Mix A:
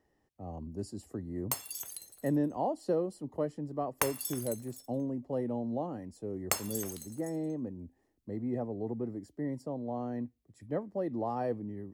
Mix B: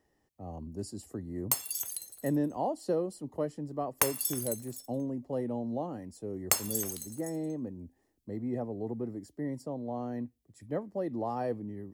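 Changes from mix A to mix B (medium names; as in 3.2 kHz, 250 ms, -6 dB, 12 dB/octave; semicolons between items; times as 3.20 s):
background: remove hum notches 50/100 Hz; master: add treble shelf 4.1 kHz +6.5 dB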